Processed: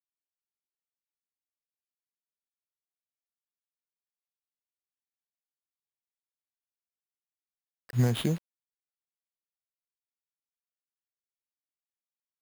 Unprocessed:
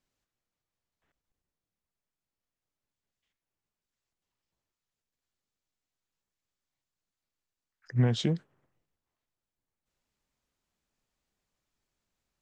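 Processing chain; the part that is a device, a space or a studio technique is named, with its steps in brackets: early 8-bit sampler (sample-rate reducer 6700 Hz, jitter 0%; bit-crush 8-bit)

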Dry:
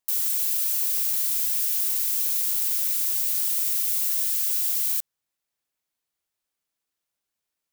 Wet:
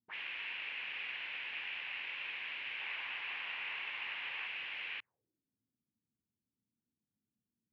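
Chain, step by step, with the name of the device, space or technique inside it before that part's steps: 2.81–4.47 bell 1000 Hz +6 dB 0.95 oct; envelope filter bass rig (envelope low-pass 230–2700 Hz up, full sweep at -22 dBFS; speaker cabinet 65–2300 Hz, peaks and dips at 110 Hz +9 dB, 650 Hz -5 dB, 1300 Hz -7 dB); gain +3.5 dB

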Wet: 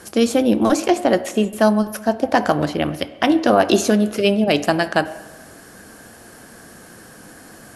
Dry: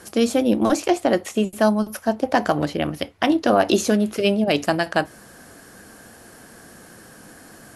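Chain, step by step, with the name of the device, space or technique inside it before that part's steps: filtered reverb send (on a send: HPF 200 Hz + LPF 3100 Hz + reverb RT60 1.1 s, pre-delay 50 ms, DRR 14.5 dB); on the sum: gain +2.5 dB

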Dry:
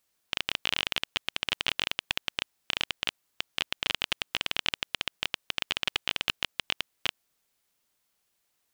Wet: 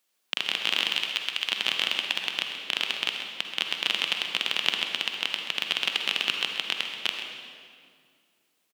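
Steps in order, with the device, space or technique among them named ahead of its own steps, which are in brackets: 0.9–1.49 HPF 1300 Hz 6 dB/oct; PA in a hall (HPF 190 Hz 24 dB/oct; bell 3100 Hz +3.5 dB 0.77 oct; echo 0.131 s -11.5 dB; reverb RT60 2.2 s, pre-delay 43 ms, DRR 3.5 dB)

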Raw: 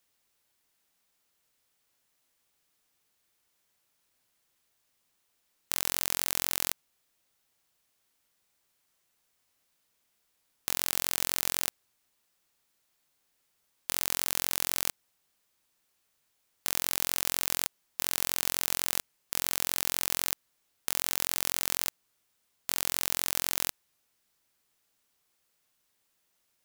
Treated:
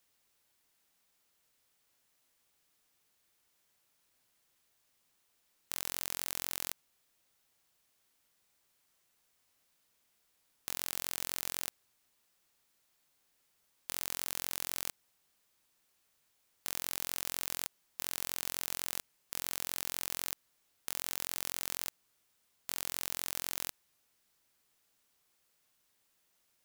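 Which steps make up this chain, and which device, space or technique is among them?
soft clipper into limiter (soft clip -6 dBFS, distortion -40 dB; limiter -9 dBFS, peak gain reduction 2.5 dB)

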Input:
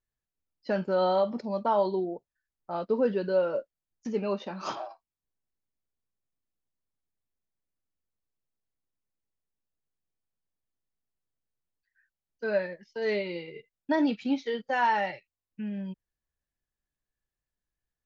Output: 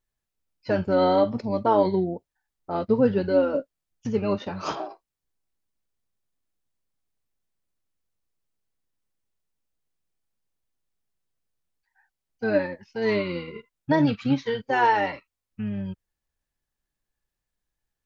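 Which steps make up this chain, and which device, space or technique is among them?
octave pedal (harmoniser -12 st -7 dB); gain +4 dB

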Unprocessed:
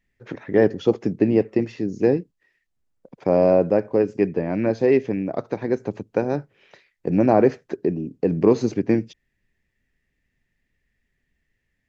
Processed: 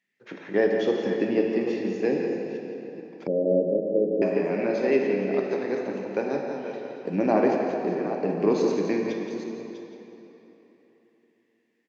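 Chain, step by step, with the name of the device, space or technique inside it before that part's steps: reverse delay 0.429 s, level -9.5 dB; PA in a hall (HPF 180 Hz 24 dB/oct; bell 3300 Hz +6.5 dB 2.8 oct; echo 0.171 s -9 dB; reverb RT60 3.5 s, pre-delay 5 ms, DRR 1 dB); 3.27–4.22 steep low-pass 570 Hz 48 dB/oct; gain -7.5 dB

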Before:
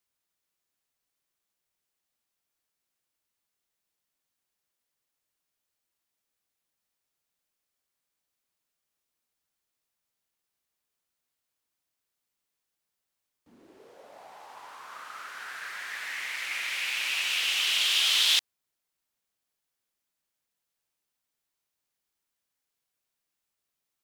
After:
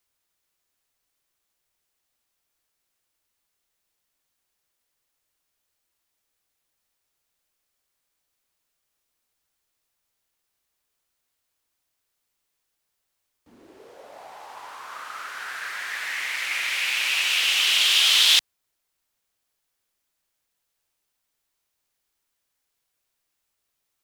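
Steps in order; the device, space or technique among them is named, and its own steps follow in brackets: low shelf boost with a cut just above (low shelf 62 Hz +5.5 dB; bell 190 Hz -4 dB 1 oct); gain +6 dB

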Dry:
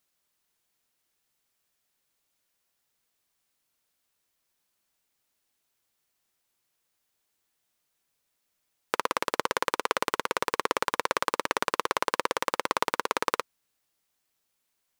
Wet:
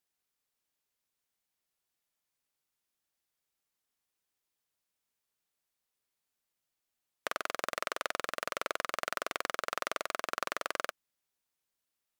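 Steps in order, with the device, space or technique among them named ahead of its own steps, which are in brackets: nightcore (varispeed +23%); gain -7.5 dB

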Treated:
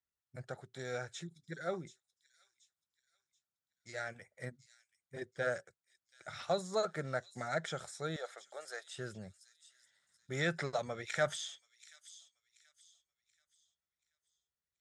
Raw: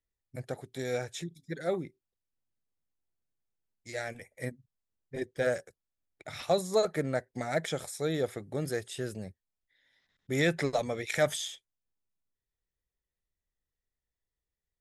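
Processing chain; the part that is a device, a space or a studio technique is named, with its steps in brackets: car door speaker (speaker cabinet 85–8300 Hz, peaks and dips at 280 Hz -10 dB, 450 Hz -4 dB, 1400 Hz +9 dB, 2400 Hz -4 dB); 8.16–8.97 Chebyshev high-pass 580 Hz, order 3; thin delay 0.731 s, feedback 34%, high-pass 4500 Hz, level -10 dB; gain -5.5 dB

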